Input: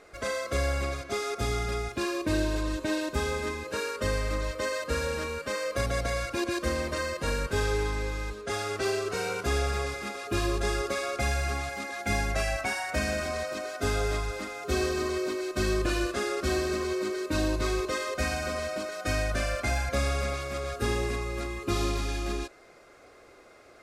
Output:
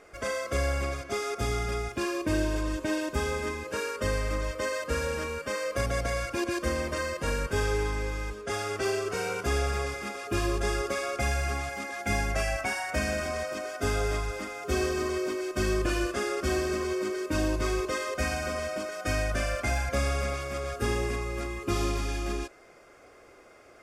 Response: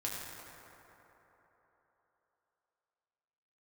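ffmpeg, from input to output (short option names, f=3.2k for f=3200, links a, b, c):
-af "bandreject=f=4k:w=5.3"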